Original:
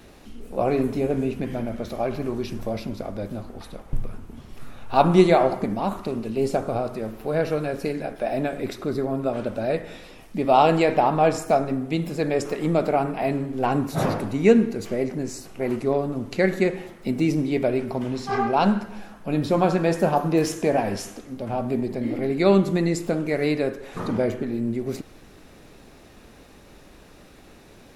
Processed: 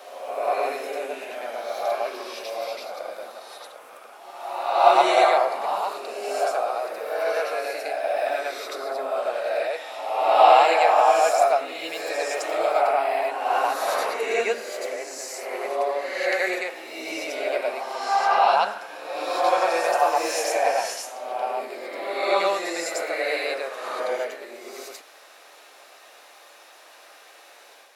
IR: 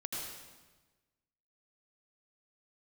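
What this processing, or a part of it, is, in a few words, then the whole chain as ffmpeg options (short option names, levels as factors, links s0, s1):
ghost voice: -filter_complex "[0:a]areverse[s0];[1:a]atrim=start_sample=2205[s1];[s0][s1]afir=irnorm=-1:irlink=0,areverse,highpass=f=610:w=0.5412,highpass=f=610:w=1.3066,volume=1.58"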